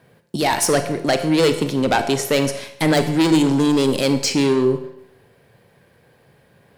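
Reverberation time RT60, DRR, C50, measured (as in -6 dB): 0.80 s, 8.0 dB, 9.5 dB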